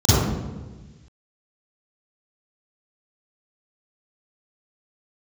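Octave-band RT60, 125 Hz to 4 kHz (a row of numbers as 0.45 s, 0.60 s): 1.7 s, 1.5 s, 1.4 s, 1.2 s, 1.3 s, 0.90 s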